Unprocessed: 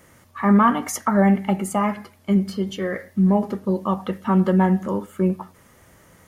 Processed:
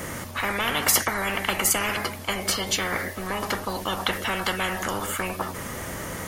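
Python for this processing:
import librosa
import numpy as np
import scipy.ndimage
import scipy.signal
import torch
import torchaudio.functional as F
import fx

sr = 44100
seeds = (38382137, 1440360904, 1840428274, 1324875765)

y = fx.spectral_comp(x, sr, ratio=10.0)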